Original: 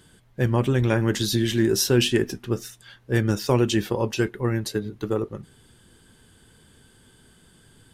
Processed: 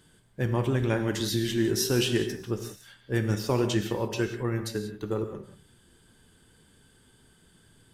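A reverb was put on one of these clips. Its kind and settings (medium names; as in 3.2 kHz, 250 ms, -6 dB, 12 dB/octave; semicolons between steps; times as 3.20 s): gated-style reverb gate 210 ms flat, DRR 6.5 dB; trim -5.5 dB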